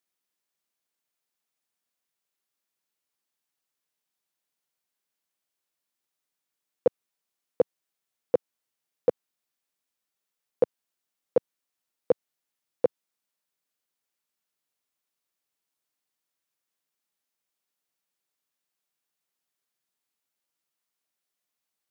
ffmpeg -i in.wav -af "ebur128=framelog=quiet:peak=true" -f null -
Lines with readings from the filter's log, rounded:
Integrated loudness:
  I:         -30.0 LUFS
  Threshold: -40.0 LUFS
Loudness range:
  LRA:         6.0 LU
  Threshold: -54.5 LUFS
  LRA low:   -38.8 LUFS
  LRA high:  -32.7 LUFS
True peak:
  Peak:      -10.9 dBFS